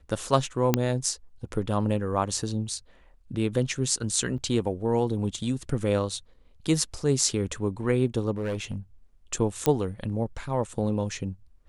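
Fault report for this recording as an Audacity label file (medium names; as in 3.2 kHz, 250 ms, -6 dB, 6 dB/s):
0.740000	0.740000	pop -6 dBFS
4.380000	4.390000	dropout 5.7 ms
8.310000	8.760000	clipped -25.5 dBFS
9.660000	9.660000	pop -8 dBFS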